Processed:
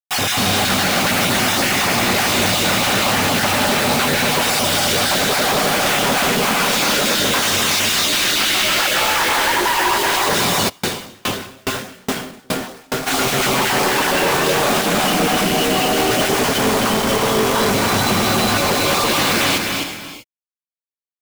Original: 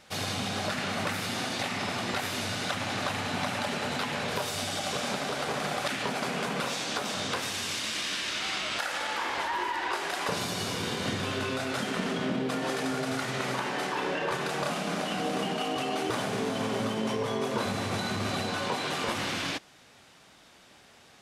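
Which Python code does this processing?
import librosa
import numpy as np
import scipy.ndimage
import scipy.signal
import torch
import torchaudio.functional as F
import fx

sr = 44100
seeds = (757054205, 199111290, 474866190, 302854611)

y = fx.spec_dropout(x, sr, seeds[0], share_pct=21)
y = fx.peak_eq(y, sr, hz=68.0, db=-5.0, octaves=1.3)
y = fx.quant_companded(y, sr, bits=2)
y = y + 10.0 ** (-5.0 / 20.0) * np.pad(y, (int(258 * sr / 1000.0), 0))[:len(y)]
y = fx.rev_gated(y, sr, seeds[1], gate_ms=410, shape='rising', drr_db=8.5)
y = fx.tremolo_decay(y, sr, direction='decaying', hz=2.4, depth_db=35, at=(10.68, 13.06), fade=0.02)
y = F.gain(torch.from_numpy(y), 8.5).numpy()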